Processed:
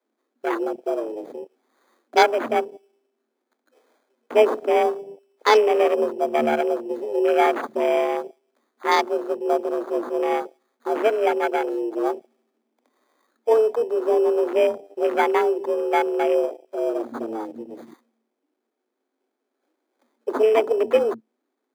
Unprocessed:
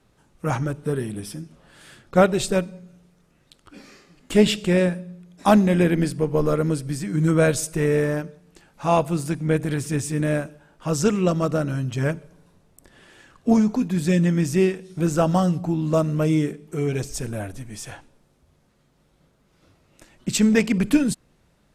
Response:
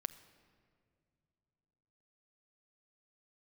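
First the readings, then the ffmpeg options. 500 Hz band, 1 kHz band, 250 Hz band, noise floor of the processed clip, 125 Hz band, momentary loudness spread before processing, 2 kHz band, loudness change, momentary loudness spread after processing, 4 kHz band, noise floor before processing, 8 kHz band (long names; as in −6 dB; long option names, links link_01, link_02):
+4.0 dB, +6.0 dB, −8.5 dB, −79 dBFS, below −30 dB, 15 LU, +1.5 dB, 0.0 dB, 13 LU, −1.0 dB, −63 dBFS, below −10 dB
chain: -af "acrusher=samples=17:mix=1:aa=0.000001,afreqshift=220,afwtdn=0.0355"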